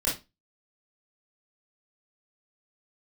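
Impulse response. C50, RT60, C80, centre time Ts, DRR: 7.0 dB, 0.25 s, 16.5 dB, 31 ms, -8.0 dB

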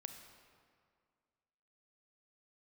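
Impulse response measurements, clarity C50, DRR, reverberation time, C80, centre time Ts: 6.5 dB, 6.0 dB, 2.1 s, 8.0 dB, 35 ms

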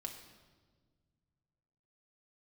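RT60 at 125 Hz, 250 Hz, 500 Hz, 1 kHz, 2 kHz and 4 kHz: 3.0 s, 2.4 s, 1.8 s, 1.3 s, 1.1 s, 1.2 s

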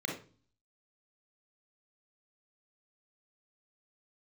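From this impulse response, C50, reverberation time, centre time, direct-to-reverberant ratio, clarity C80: 4.0 dB, 0.40 s, 30 ms, -0.5 dB, 11.0 dB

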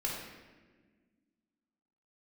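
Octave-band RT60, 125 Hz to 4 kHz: 1.9 s, 2.5 s, 1.7 s, 1.2 s, 1.3 s, 0.95 s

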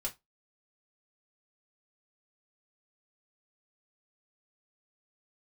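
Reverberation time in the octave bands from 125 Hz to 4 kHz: 0.20 s, 0.20 s, 0.15 s, 0.20 s, 0.15 s, 0.15 s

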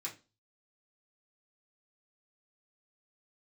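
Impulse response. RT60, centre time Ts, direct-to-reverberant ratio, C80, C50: 0.30 s, 16 ms, -5.5 dB, 20.0 dB, 13.5 dB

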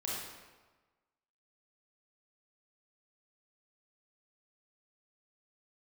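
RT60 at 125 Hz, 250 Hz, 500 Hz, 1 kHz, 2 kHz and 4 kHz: 1.3 s, 1.2 s, 1.3 s, 1.3 s, 1.1 s, 0.95 s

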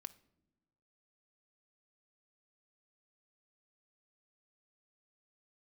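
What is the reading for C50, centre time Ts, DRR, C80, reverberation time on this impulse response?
18.0 dB, 3 ms, 13.0 dB, 22.5 dB, no single decay rate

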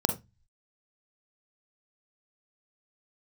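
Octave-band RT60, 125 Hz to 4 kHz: 0.60 s, 0.30 s, 0.20 s, 0.20 s, 0.20 s, 0.20 s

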